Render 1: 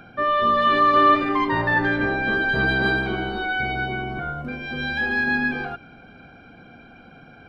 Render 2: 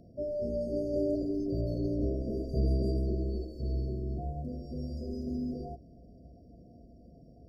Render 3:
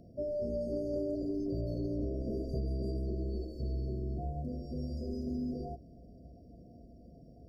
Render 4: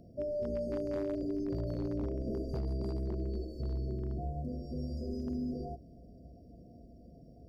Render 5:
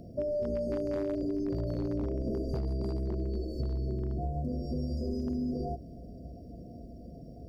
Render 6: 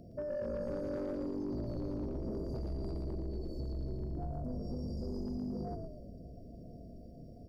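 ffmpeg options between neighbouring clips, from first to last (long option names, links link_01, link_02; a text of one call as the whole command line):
ffmpeg -i in.wav -af "afftfilt=real='re*(1-between(b*sr/4096,720,4300))':imag='im*(1-between(b*sr/4096,720,4300))':win_size=4096:overlap=0.75,equalizer=frequency=60:width_type=o:width=0.85:gain=14.5,volume=-7.5dB" out.wav
ffmpeg -i in.wav -af "acompressor=threshold=-31dB:ratio=6" out.wav
ffmpeg -i in.wav -af "aeval=exprs='0.0398*(abs(mod(val(0)/0.0398+3,4)-2)-1)':channel_layout=same" out.wav
ffmpeg -i in.wav -af "acompressor=threshold=-37dB:ratio=6,volume=8dB" out.wav
ffmpeg -i in.wav -filter_complex "[0:a]asplit=7[link_01][link_02][link_03][link_04][link_05][link_06][link_07];[link_02]adelay=115,afreqshift=-47,volume=-4.5dB[link_08];[link_03]adelay=230,afreqshift=-94,volume=-10.9dB[link_09];[link_04]adelay=345,afreqshift=-141,volume=-17.3dB[link_10];[link_05]adelay=460,afreqshift=-188,volume=-23.6dB[link_11];[link_06]adelay=575,afreqshift=-235,volume=-30dB[link_12];[link_07]adelay=690,afreqshift=-282,volume=-36.4dB[link_13];[link_01][link_08][link_09][link_10][link_11][link_12][link_13]amix=inputs=7:normalize=0,asoftclip=type=tanh:threshold=-25dB,volume=-5.5dB" out.wav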